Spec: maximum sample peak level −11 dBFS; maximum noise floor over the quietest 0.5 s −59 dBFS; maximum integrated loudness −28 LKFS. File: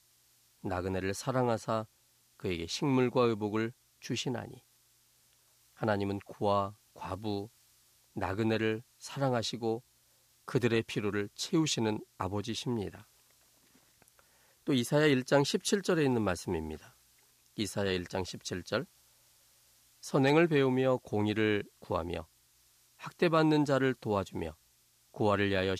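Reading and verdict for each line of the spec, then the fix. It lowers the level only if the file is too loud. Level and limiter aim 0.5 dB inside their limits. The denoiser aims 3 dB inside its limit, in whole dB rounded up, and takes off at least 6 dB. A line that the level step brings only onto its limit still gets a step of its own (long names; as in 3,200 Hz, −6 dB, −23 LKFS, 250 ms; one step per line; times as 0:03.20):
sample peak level −15.0 dBFS: in spec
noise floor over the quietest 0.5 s −68 dBFS: in spec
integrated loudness −32.0 LKFS: in spec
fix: no processing needed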